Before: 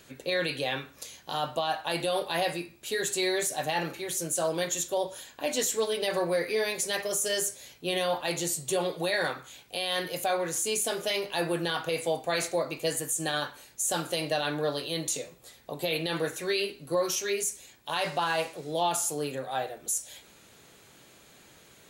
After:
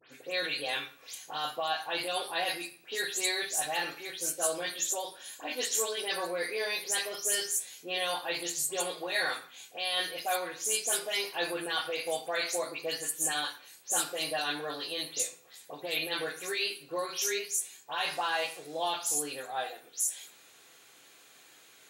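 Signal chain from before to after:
every frequency bin delayed by itself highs late, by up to 118 ms
high-pass filter 990 Hz 6 dB per octave
on a send: convolution reverb RT60 0.45 s, pre-delay 3 ms, DRR 6.5 dB

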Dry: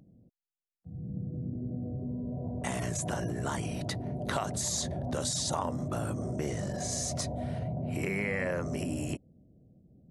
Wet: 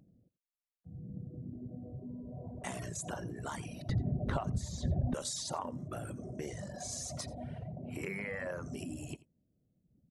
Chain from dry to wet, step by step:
0:03.89–0:05.14: RIAA equalisation playback
reverb reduction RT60 1.8 s
single-tap delay 86 ms −20.5 dB
level −5 dB

